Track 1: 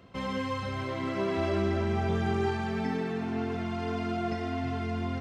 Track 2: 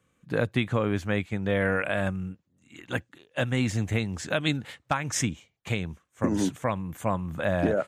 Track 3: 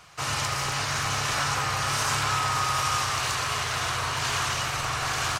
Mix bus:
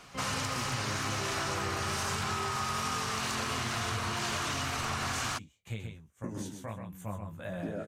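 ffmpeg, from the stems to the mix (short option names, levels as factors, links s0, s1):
-filter_complex "[0:a]volume=0.531[s0];[1:a]lowshelf=f=120:g=10.5,flanger=delay=16.5:depth=3.4:speed=1.6,crystalizer=i=1.5:c=0,volume=0.251,asplit=2[s1][s2];[s2]volume=0.501[s3];[2:a]volume=0.841[s4];[s3]aecho=0:1:129:1[s5];[s0][s1][s4][s5]amix=inputs=4:normalize=0,acompressor=threshold=0.0316:ratio=6"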